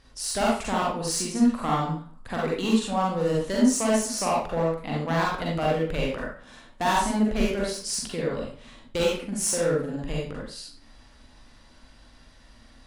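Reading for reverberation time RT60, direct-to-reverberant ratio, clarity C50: 0.45 s, -4.0 dB, 0.0 dB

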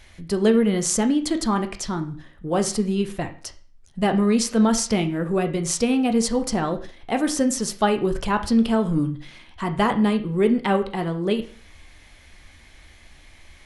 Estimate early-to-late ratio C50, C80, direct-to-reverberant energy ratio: 13.0 dB, 17.5 dB, 6.5 dB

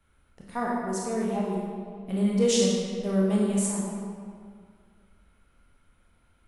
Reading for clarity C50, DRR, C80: -1.0 dB, -4.0 dB, 1.0 dB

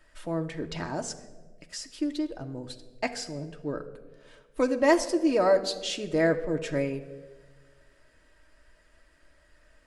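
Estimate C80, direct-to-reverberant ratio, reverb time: 15.0 dB, 3.5 dB, 1.4 s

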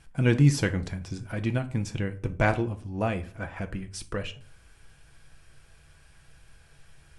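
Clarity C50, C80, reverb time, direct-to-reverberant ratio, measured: 16.0 dB, 21.0 dB, 0.45 s, 7.0 dB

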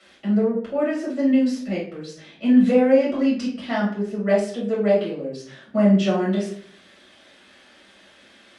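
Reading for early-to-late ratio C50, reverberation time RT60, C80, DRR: 5.0 dB, 0.55 s, 10.5 dB, -8.0 dB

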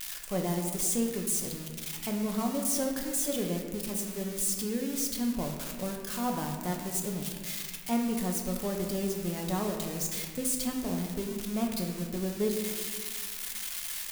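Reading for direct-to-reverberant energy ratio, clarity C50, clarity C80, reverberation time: 1.0 dB, 4.0 dB, 5.5 dB, 1.7 s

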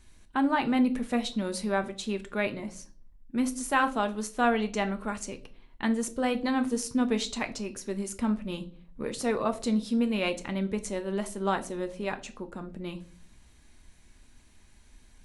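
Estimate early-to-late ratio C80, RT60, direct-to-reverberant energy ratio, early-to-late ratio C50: 21.0 dB, 0.50 s, 7.5 dB, 17.5 dB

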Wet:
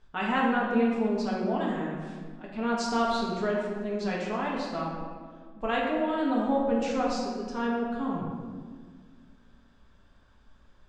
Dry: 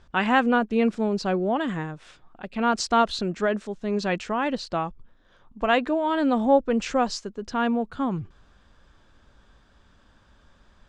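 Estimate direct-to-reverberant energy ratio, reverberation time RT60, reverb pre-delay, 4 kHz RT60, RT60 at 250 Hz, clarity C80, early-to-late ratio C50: -4.5 dB, 1.7 s, 4 ms, 1.0 s, 2.4 s, 2.5 dB, 0.5 dB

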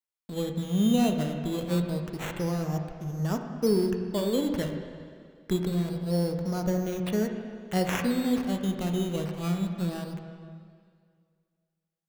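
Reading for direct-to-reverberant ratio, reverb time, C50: 4.0 dB, 2.1 s, 5.5 dB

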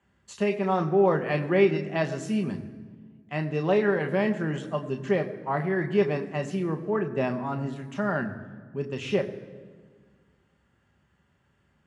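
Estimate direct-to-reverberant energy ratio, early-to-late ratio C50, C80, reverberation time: 4.5 dB, 12.5 dB, 13.5 dB, 1.7 s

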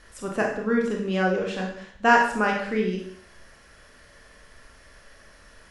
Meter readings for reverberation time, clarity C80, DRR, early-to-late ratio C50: 0.60 s, 8.0 dB, -0.5 dB, 5.0 dB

